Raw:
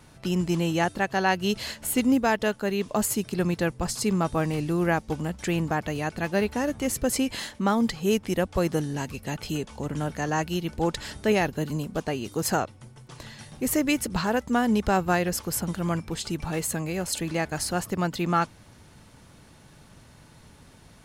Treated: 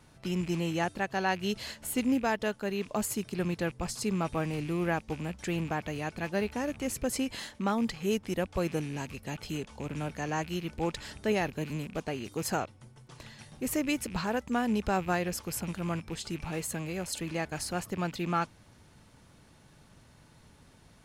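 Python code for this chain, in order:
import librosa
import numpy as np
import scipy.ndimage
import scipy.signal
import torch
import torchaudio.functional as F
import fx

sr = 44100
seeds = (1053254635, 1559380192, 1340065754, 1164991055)

y = fx.rattle_buzz(x, sr, strikes_db=-39.0, level_db=-31.0)
y = fx.high_shelf(y, sr, hz=12000.0, db=-3.5)
y = y * librosa.db_to_amplitude(-6.0)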